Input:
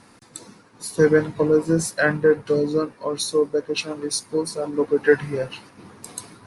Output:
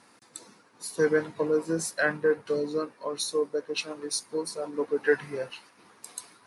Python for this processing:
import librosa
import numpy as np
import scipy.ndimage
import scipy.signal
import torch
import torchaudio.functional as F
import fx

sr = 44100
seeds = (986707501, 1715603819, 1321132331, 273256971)

y = fx.highpass(x, sr, hz=fx.steps((0.0, 390.0), (5.5, 940.0)), slope=6)
y = F.gain(torch.from_numpy(y), -5.0).numpy()